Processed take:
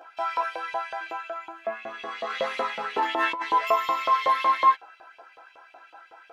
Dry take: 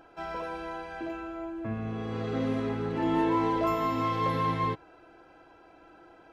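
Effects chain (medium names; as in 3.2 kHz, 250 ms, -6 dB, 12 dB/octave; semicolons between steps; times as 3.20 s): chorus voices 2, 0.77 Hz, delay 14 ms, depth 1.1 ms; LFO high-pass saw up 5.4 Hz 590–3200 Hz; 2.30–3.42 s: compressor with a negative ratio -33 dBFS, ratio -1; trim +8 dB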